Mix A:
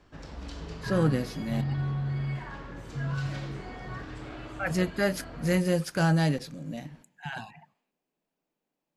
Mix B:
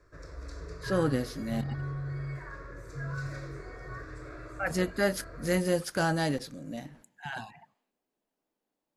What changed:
speech: add thirty-one-band EQ 160 Hz -9 dB, 2500 Hz -5 dB, 10000 Hz +3 dB; background: add fixed phaser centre 820 Hz, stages 6

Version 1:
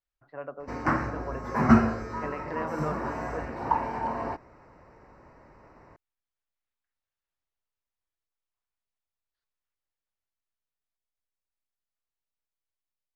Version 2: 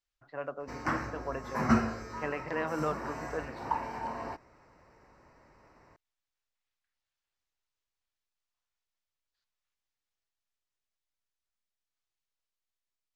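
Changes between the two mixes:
background -7.5 dB; master: add high shelf 2700 Hz +11.5 dB

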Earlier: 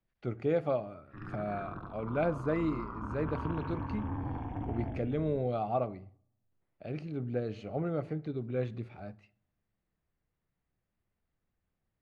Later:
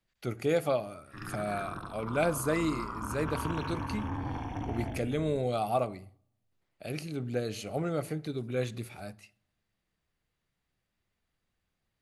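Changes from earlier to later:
background: remove air absorption 66 m; master: remove tape spacing loss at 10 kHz 36 dB

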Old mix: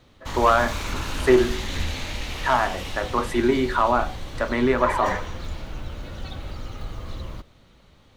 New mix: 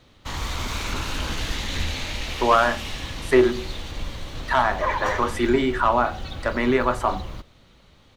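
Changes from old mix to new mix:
speech: entry +2.05 s; master: add bell 3800 Hz +3 dB 2.1 oct

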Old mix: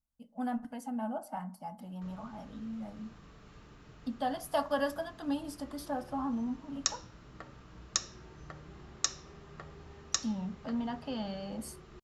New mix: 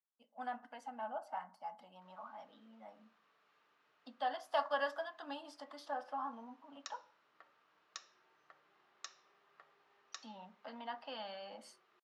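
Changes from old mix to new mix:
background -11.5 dB; master: add BPF 740–3800 Hz

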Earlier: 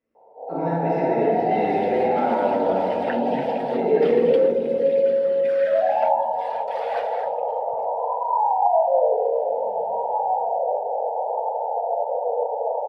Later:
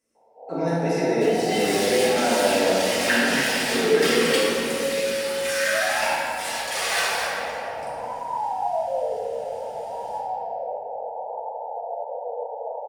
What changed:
first sound -8.5 dB; second sound: send on; master: remove air absorption 430 m

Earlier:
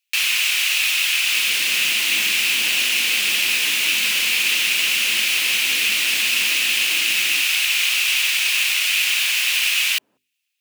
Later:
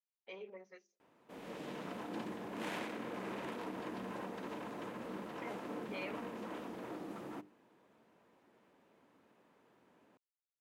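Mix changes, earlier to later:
speech +12.0 dB; first sound: muted

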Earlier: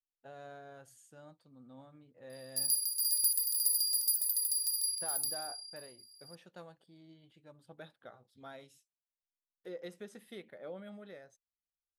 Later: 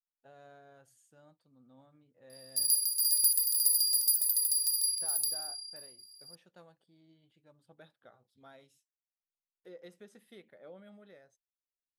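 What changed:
speech -6.0 dB; background +3.5 dB

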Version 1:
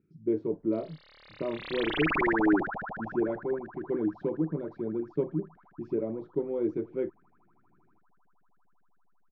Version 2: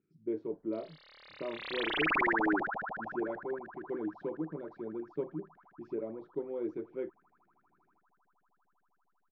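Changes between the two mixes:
speech -3.5 dB; master: add low shelf 230 Hz -12 dB

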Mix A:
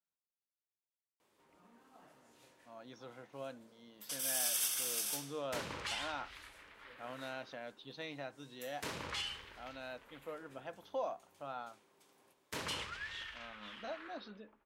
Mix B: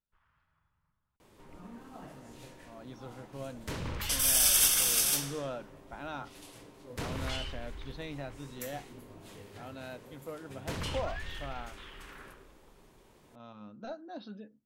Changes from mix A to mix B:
first sound +10.5 dB; second sound: entry -1.85 s; master: remove HPF 520 Hz 6 dB/oct

